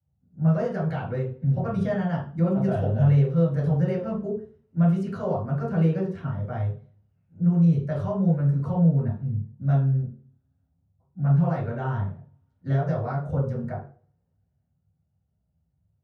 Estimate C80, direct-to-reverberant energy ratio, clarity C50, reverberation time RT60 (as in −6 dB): 10.0 dB, −8.0 dB, 5.0 dB, 0.40 s